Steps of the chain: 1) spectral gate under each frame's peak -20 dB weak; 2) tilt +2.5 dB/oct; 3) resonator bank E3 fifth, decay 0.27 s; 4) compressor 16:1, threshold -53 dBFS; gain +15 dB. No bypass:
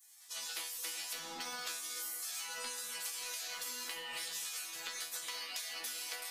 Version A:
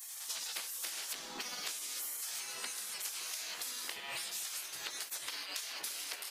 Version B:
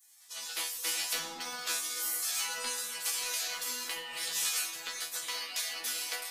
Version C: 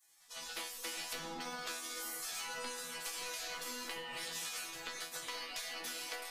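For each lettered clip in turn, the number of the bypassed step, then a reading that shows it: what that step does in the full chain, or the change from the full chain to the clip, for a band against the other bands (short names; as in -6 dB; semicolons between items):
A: 3, 500 Hz band -2.0 dB; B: 4, mean gain reduction 5.5 dB; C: 2, 250 Hz band +6.0 dB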